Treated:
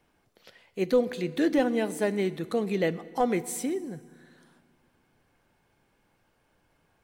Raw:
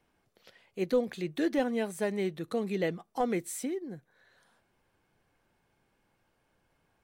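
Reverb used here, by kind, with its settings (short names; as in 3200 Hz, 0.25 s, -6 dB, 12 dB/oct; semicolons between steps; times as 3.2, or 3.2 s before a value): FDN reverb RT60 1.8 s, low-frequency decay 1.45×, high-frequency decay 0.85×, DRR 15.5 dB; gain +4 dB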